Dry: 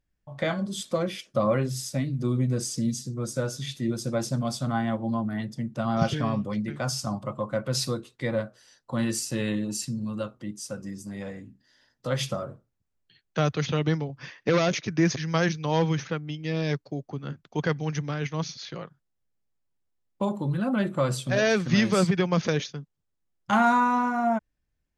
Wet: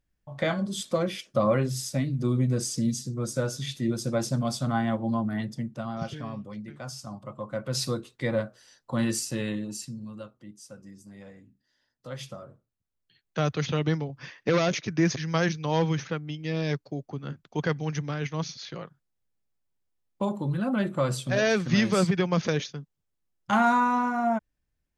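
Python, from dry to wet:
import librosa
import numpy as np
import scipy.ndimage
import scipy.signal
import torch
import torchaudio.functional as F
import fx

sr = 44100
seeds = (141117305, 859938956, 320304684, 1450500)

y = fx.gain(x, sr, db=fx.line((5.55, 0.5), (5.99, -9.5), (7.09, -9.5), (7.98, 0.5), (9.11, 0.5), (10.34, -10.5), (12.42, -10.5), (13.54, -1.0)))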